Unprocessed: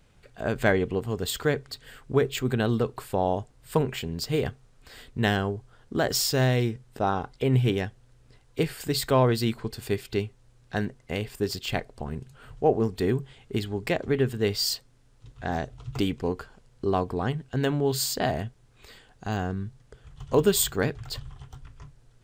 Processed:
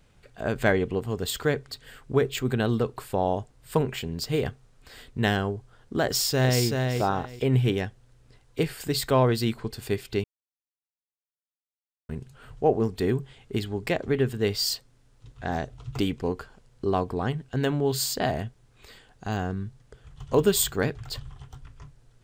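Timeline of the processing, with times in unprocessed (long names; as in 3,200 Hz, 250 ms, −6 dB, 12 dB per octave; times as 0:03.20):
0:06.06–0:06.63: delay throw 380 ms, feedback 20%, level −4 dB
0:10.24–0:12.09: silence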